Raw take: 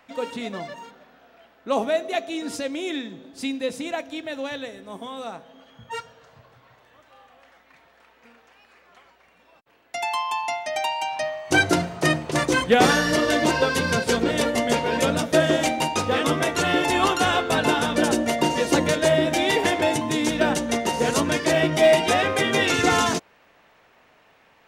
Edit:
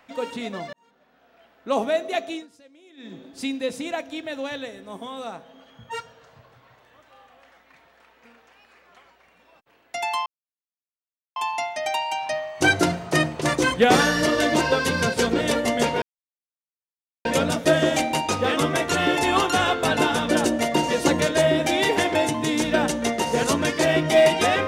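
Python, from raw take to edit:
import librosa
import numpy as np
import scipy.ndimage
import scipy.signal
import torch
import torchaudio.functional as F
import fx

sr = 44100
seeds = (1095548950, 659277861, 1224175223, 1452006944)

y = fx.edit(x, sr, fx.fade_in_span(start_s=0.73, length_s=0.97),
    fx.fade_down_up(start_s=2.31, length_s=0.82, db=-23.5, fade_s=0.16),
    fx.insert_silence(at_s=10.26, length_s=1.1),
    fx.insert_silence(at_s=14.92, length_s=1.23), tone=tone)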